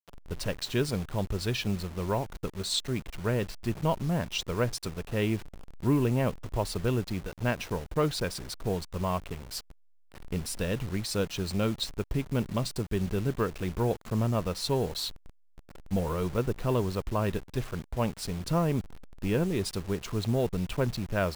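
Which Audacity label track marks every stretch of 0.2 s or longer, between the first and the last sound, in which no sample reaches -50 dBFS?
9.710000	10.120000	silence
15.300000	15.580000	silence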